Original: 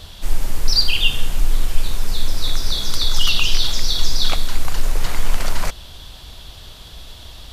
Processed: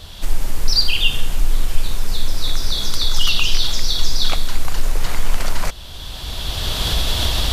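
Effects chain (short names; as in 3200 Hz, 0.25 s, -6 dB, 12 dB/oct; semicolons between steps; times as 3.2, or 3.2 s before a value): recorder AGC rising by 17 dB/s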